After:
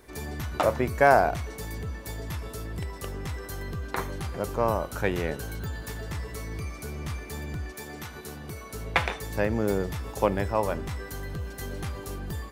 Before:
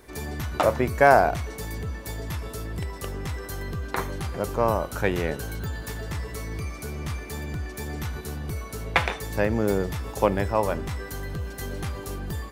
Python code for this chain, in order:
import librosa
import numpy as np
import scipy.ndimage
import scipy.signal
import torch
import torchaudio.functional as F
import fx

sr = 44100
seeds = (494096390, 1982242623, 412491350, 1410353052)

y = fx.highpass(x, sr, hz=fx.line((7.71, 370.0), (8.73, 140.0)), slope=6, at=(7.71, 8.73), fade=0.02)
y = y * 10.0 ** (-2.5 / 20.0)